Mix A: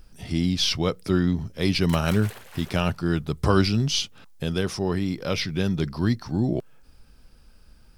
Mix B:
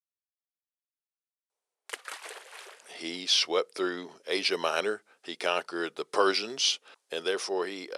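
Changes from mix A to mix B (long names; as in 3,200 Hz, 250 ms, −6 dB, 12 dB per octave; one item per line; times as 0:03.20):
speech: entry +2.70 s
master: add elliptic band-pass filter 420–10,000 Hz, stop band 70 dB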